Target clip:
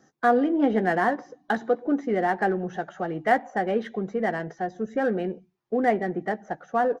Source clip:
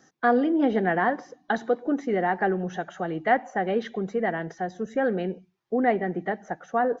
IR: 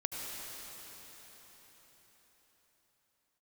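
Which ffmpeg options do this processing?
-filter_complex "[0:a]asplit=2[link_01][link_02];[link_02]adynamicsmooth=sensitivity=6.5:basefreq=1700,volume=-1.5dB[link_03];[link_01][link_03]amix=inputs=2:normalize=0,asplit=2[link_04][link_05];[link_05]adelay=14,volume=-12dB[link_06];[link_04][link_06]amix=inputs=2:normalize=0,volume=-5dB"

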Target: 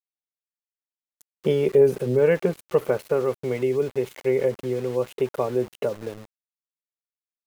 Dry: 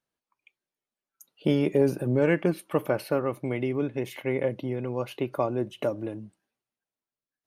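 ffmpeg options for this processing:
ffmpeg -i in.wav -af "superequalizer=6b=0.447:7b=2.51:14b=0.631,aeval=exprs='val(0)*gte(abs(val(0)),0.0133)':channel_layout=same" out.wav

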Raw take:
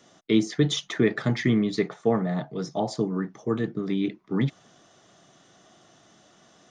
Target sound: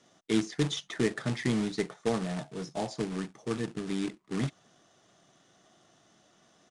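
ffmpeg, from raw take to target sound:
ffmpeg -i in.wav -af "acrusher=bits=2:mode=log:mix=0:aa=0.000001,aresample=22050,aresample=44100,volume=-7dB" out.wav

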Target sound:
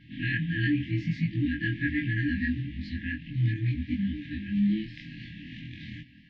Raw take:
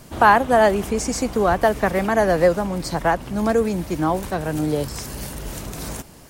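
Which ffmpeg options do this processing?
ffmpeg -i in.wav -af "afftfilt=real='re':imag='-im':win_size=2048:overlap=0.75,highpass=frequency=200:width_type=q:width=0.5412,highpass=frequency=200:width_type=q:width=1.307,lowpass=frequency=3500:width_type=q:width=0.5176,lowpass=frequency=3500:width_type=q:width=0.7071,lowpass=frequency=3500:width_type=q:width=1.932,afreqshift=-95,afftfilt=real='re*(1-between(b*sr/4096,330,1600))':imag='im*(1-between(b*sr/4096,330,1600))':win_size=4096:overlap=0.75,volume=1.5dB" out.wav

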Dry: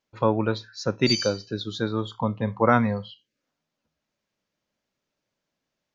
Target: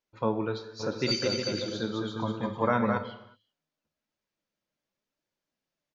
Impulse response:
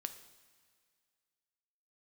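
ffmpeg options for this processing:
-filter_complex "[0:a]flanger=delay=1.9:depth=5.1:regen=62:speed=0.94:shape=triangular,asplit=3[link_01][link_02][link_03];[link_01]afade=type=out:start_time=0.79:duration=0.02[link_04];[link_02]aecho=1:1:210|357|459.9|531.9|582.4:0.631|0.398|0.251|0.158|0.1,afade=type=in:start_time=0.79:duration=0.02,afade=type=out:start_time=2.97:duration=0.02[link_05];[link_03]afade=type=in:start_time=2.97:duration=0.02[link_06];[link_04][link_05][link_06]amix=inputs=3:normalize=0[link_07];[1:a]atrim=start_sample=2205,afade=type=out:start_time=0.43:duration=0.01,atrim=end_sample=19404[link_08];[link_07][link_08]afir=irnorm=-1:irlink=0"

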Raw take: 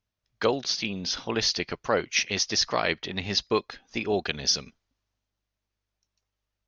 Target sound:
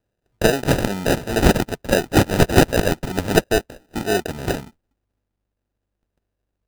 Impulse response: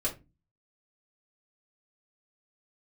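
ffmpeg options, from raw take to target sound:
-af "asetnsamples=nb_out_samples=441:pad=0,asendcmd='3.44 highshelf g -5',highshelf=frequency=2600:gain=7.5,acrusher=samples=40:mix=1:aa=0.000001,volume=6.5dB"

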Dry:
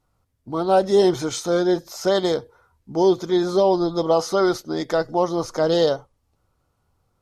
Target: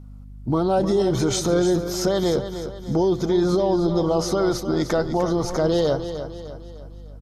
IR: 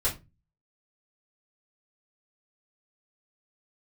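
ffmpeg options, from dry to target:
-filter_complex "[0:a]asplit=2[link_01][link_02];[link_02]acompressor=threshold=-28dB:ratio=6,volume=2dB[link_03];[link_01][link_03]amix=inputs=2:normalize=0,lowshelf=frequency=240:gain=11,alimiter=limit=-11.5dB:level=0:latency=1:release=43,aeval=exprs='val(0)+0.0126*(sin(2*PI*50*n/s)+sin(2*PI*2*50*n/s)/2+sin(2*PI*3*50*n/s)/3+sin(2*PI*4*50*n/s)/4+sin(2*PI*5*50*n/s)/5)':channel_layout=same,aecho=1:1:302|604|906|1208|1510:0.316|0.142|0.064|0.0288|0.013,volume=-1.5dB"

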